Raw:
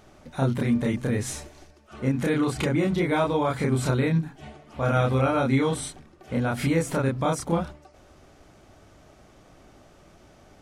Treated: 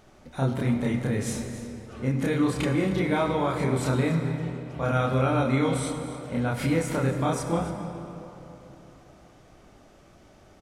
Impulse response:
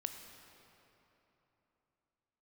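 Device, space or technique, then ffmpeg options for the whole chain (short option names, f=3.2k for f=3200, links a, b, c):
cave: -filter_complex "[0:a]aecho=1:1:278:0.168[a];[1:a]atrim=start_sample=2205[b];[a][b]afir=irnorm=-1:irlink=0"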